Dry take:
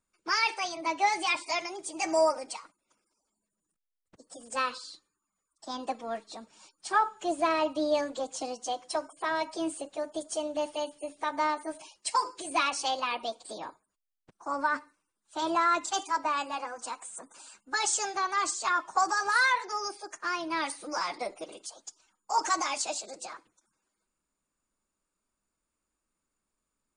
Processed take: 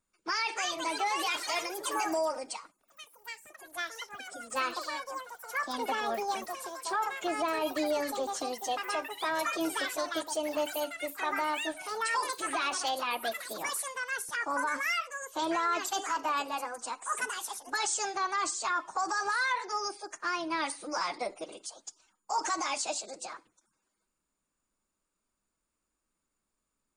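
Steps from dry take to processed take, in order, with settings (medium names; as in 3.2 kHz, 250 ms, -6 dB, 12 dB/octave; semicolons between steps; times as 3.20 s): ever faster or slower copies 357 ms, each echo +5 st, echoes 3, each echo -6 dB; peak limiter -22 dBFS, peak gain reduction 9 dB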